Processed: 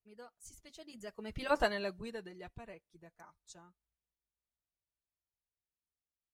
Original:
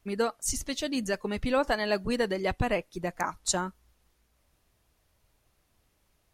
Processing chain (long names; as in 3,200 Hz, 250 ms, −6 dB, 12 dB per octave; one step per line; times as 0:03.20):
source passing by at 0:01.58, 17 m/s, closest 1.5 metres
notch comb filter 270 Hz